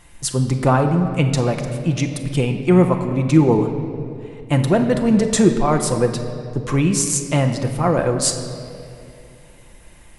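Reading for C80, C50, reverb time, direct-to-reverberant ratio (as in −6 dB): 8.5 dB, 7.5 dB, 2.6 s, 4.0 dB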